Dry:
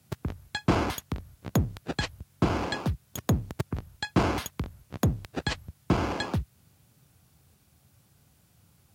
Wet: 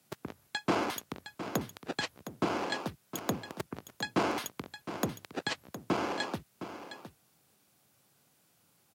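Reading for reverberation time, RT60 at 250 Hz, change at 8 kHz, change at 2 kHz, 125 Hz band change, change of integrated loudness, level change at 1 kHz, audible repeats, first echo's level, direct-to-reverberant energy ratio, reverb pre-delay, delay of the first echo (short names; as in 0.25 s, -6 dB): none, none, -2.0 dB, -2.0 dB, -14.5 dB, -5.5 dB, -2.0 dB, 1, -11.5 dB, none, none, 0.712 s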